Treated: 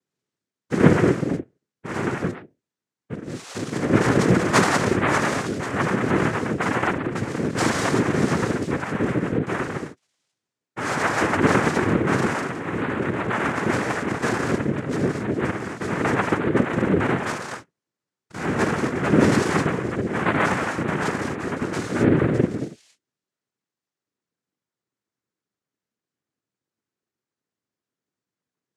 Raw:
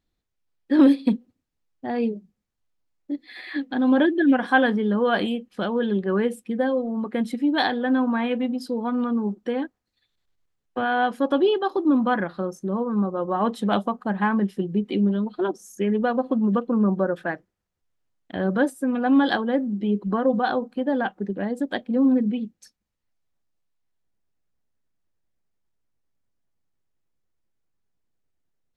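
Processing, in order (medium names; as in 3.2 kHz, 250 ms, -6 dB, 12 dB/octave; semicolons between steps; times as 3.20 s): gated-style reverb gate 290 ms flat, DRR -2 dB; noise-vocoded speech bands 3; trim -3.5 dB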